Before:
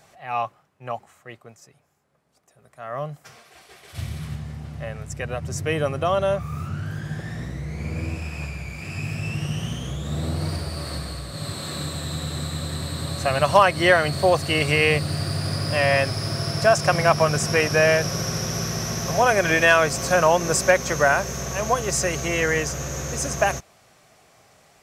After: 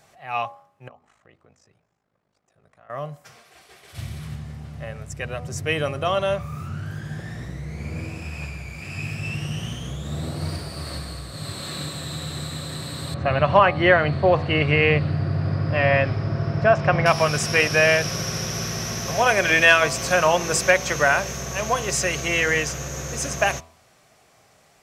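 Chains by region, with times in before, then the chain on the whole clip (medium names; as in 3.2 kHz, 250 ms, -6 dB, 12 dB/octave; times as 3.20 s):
0.88–2.90 s: compression 3:1, threshold -47 dBFS + ring modulator 26 Hz + distance through air 81 m
13.14–17.06 s: low-pass 2 kHz + bass shelf 400 Hz +5.5 dB
whole clip: de-hum 82.04 Hz, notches 15; dynamic bell 2.8 kHz, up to +7 dB, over -38 dBFS, Q 0.98; trim -1.5 dB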